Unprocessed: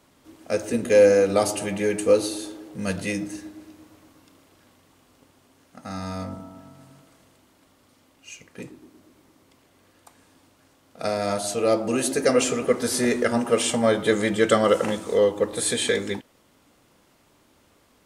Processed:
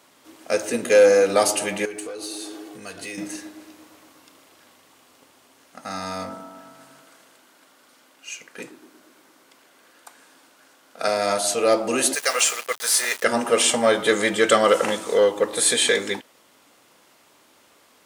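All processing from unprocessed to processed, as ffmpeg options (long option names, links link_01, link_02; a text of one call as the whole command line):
ffmpeg -i in.wav -filter_complex "[0:a]asettb=1/sr,asplit=3[link_01][link_02][link_03];[link_01]atrim=end=1.854[link_04];[link_02]atrim=start=1.85:end=3.18,asetpts=PTS-STARTPTS,afade=type=in:duration=0.004:curve=qsin,afade=type=out:start_time=1.326:duration=0.004:curve=qsin,acompressor=threshold=-35dB:ratio=4:attack=3.2:release=140:knee=1:detection=peak,asoftclip=type=hard:threshold=-30.5dB,aecho=1:1:2.7:0.49,atrim=end_sample=58653[link_05];[link_03]atrim=start=3.176[link_06];[link_04][link_05]acrossfade=duration=0.004:curve1=hsin:curve2=qsin[link_07];[link_07][link_06]acrossfade=duration=0.004:curve1=qsin:curve2=hsin,asettb=1/sr,asplit=3[link_08][link_09][link_10];[link_08]atrim=end=6.304[link_11];[link_09]atrim=start=6.3:end=11.08,asetpts=PTS-STARTPTS,afade=type=in:duration=0.004:curve=qsin,afade=type=out:start_time=4.776:duration=0.004:curve=qsin,highpass=160,equalizer=frequency=1500:width_type=o:width=0.23:gain=6.5[link_12];[link_10]atrim=start=11.076[link_13];[link_11][link_12]acrossfade=duration=0.004:curve1=hsin:curve2=qsin[link_14];[link_14][link_13]acrossfade=duration=0.004:curve1=qsin:curve2=hsin,asettb=1/sr,asplit=3[link_15][link_16][link_17];[link_15]atrim=end=12.154[link_18];[link_16]atrim=start=12.15:end=13.24,asetpts=PTS-STARTPTS,afade=type=in:duration=0.004:curve=qsin,afade=type=out:start_time=1.086:duration=0.004:curve=qsin,highpass=950,highshelf=frequency=10000:gain=4.5,aeval=exprs='val(0)*gte(abs(val(0)),0.0211)':channel_layout=same[link_19];[link_17]atrim=start=13.236[link_20];[link_18][link_19]acrossfade=duration=0.004:curve1=hsin:curve2=qsin[link_21];[link_21][link_20]acrossfade=duration=0.004:curve1=qsin:curve2=hsin,acontrast=69,highpass=frequency=620:poles=1" out.wav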